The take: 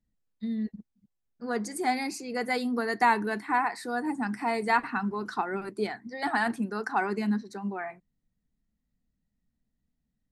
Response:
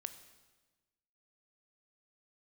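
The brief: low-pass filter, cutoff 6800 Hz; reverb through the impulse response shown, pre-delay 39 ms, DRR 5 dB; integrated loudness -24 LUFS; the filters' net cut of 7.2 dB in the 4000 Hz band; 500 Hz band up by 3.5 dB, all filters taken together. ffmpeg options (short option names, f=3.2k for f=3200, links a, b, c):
-filter_complex "[0:a]lowpass=6.8k,equalizer=f=500:t=o:g=4.5,equalizer=f=4k:t=o:g=-8,asplit=2[a][b];[1:a]atrim=start_sample=2205,adelay=39[c];[b][c]afir=irnorm=-1:irlink=0,volume=-2dB[d];[a][d]amix=inputs=2:normalize=0,volume=3.5dB"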